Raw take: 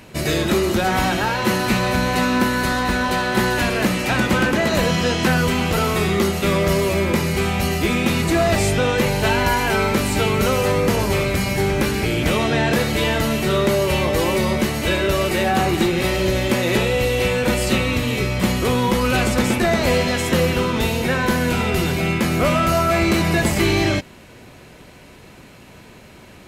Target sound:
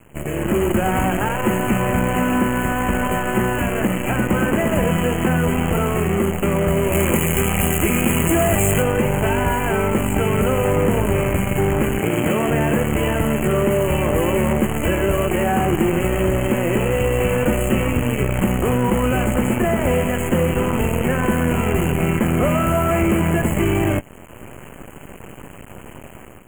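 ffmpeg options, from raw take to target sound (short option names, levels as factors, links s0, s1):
-filter_complex "[0:a]acrusher=bits=4:dc=4:mix=0:aa=0.000001,asettb=1/sr,asplit=3[s0][s1][s2];[s0]atrim=end=11.994[s3];[s1]atrim=start=11.99:end=12.49,asetpts=PTS-STARTPTS,afade=t=in:d=0.004:c=qsin,afade=t=out:st=0.496:d=0.004:c=qsin,highpass=140[s4];[s2]atrim=start=12.486[s5];[s3][s4]acrossfade=d=0.004:c1=hsin:c2=qsin[s6];[s6][s5]acrossfade=d=0.004:c1=qsin:c2=hsin,acompressor=threshold=0.1:ratio=6,asuperstop=centerf=4600:order=20:qfactor=1.3,tiltshelf=f=1200:g=4.5,dynaudnorm=f=150:g=5:m=3.76,asettb=1/sr,asplit=3[s7][s8][s9];[s7]atrim=end=6.924[s10];[s8]atrim=start=6.92:end=8.83,asetpts=PTS-STARTPTS,afade=t=in:d=0.004:c=qsin,afade=t=out:st=1.906:d=0.004:c=qsin,highshelf=f=3200:g=11[s11];[s9]atrim=start=8.826[s12];[s10][s11]acrossfade=d=0.004:c1=hsin:c2=qsin[s13];[s13][s12]acrossfade=d=0.004:c1=qsin:c2=hsin,volume=0.531"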